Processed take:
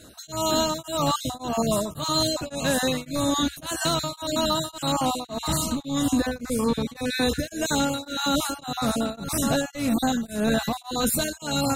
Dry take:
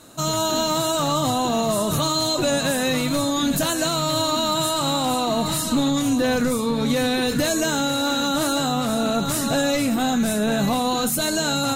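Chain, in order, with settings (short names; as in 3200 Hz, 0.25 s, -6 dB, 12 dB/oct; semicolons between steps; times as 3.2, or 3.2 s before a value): random spectral dropouts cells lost 24%; bell 64 Hz +12.5 dB 0.75 oct; beating tremolo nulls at 1.8 Hz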